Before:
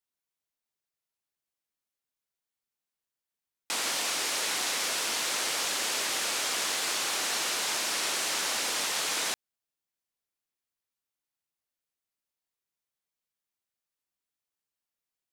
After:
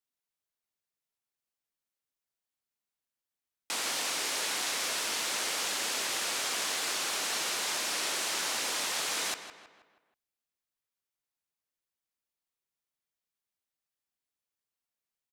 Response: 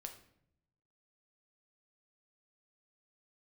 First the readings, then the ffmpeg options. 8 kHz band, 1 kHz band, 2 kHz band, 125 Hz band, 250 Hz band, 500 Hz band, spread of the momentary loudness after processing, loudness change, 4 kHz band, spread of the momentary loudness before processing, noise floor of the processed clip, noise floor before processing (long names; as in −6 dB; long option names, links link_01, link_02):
−2.5 dB, −2.0 dB, −2.0 dB, −2.0 dB, −2.0 dB, −2.0 dB, 2 LU, −2.5 dB, −2.5 dB, 1 LU, below −85 dBFS, below −85 dBFS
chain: -filter_complex "[0:a]asplit=2[link_01][link_02];[link_02]adelay=160,lowpass=frequency=3400:poles=1,volume=-10dB,asplit=2[link_03][link_04];[link_04]adelay=160,lowpass=frequency=3400:poles=1,volume=0.48,asplit=2[link_05][link_06];[link_06]adelay=160,lowpass=frequency=3400:poles=1,volume=0.48,asplit=2[link_07][link_08];[link_08]adelay=160,lowpass=frequency=3400:poles=1,volume=0.48,asplit=2[link_09][link_10];[link_10]adelay=160,lowpass=frequency=3400:poles=1,volume=0.48[link_11];[link_01][link_03][link_05][link_07][link_09][link_11]amix=inputs=6:normalize=0,volume=-2.5dB"